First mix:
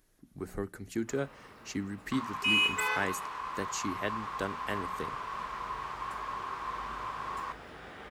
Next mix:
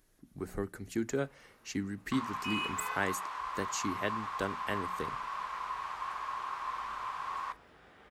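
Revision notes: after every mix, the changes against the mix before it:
first sound −11.5 dB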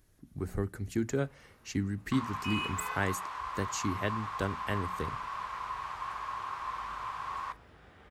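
master: add parametric band 80 Hz +12 dB 1.7 octaves

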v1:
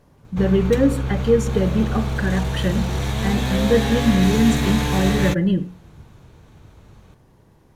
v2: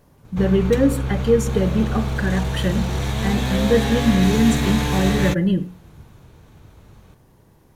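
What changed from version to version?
speech: add high-shelf EQ 11,000 Hz +12 dB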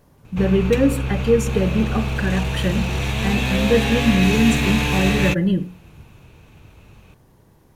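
background: add parametric band 2,600 Hz +13 dB 0.34 octaves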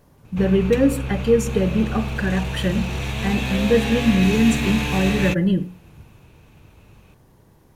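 background −3.5 dB

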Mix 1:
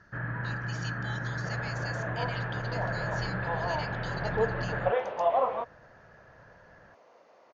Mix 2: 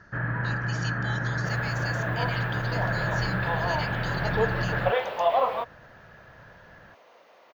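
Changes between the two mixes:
speech +4.5 dB
first sound +5.5 dB
second sound: remove head-to-tape spacing loss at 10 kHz 38 dB

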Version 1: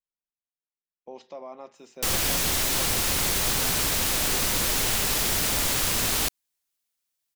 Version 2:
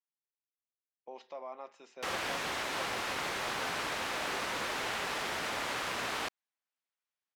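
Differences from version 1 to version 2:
background: add high-shelf EQ 2,400 Hz −10 dB
master: add resonant band-pass 1,500 Hz, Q 0.58

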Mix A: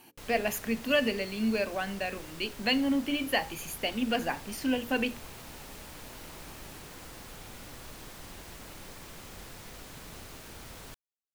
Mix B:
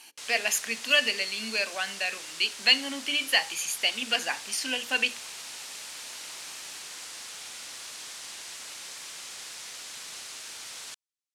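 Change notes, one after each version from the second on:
speech: send +8.0 dB
master: add meter weighting curve ITU-R 468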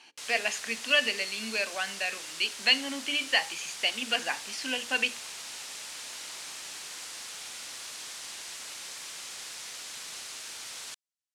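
speech: add high-frequency loss of the air 120 metres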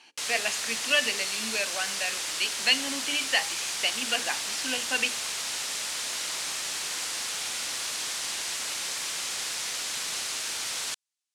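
background +9.0 dB

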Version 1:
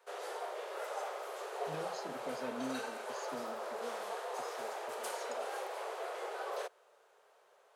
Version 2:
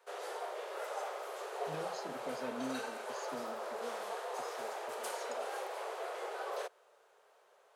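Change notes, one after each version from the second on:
nothing changed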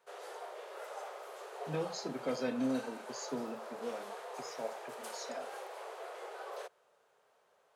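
speech +7.5 dB
background −4.5 dB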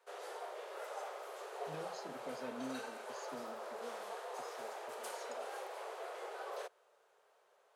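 speech −11.0 dB

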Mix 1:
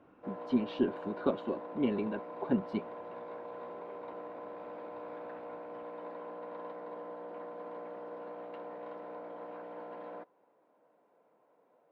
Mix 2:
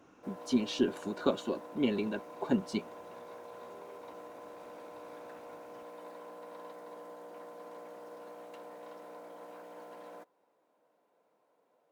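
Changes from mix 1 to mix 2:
background −5.5 dB
master: remove high-frequency loss of the air 430 metres

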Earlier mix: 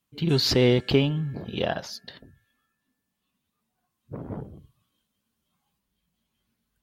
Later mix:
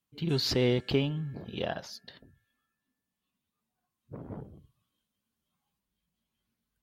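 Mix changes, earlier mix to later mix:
speech −6.5 dB
background −6.5 dB

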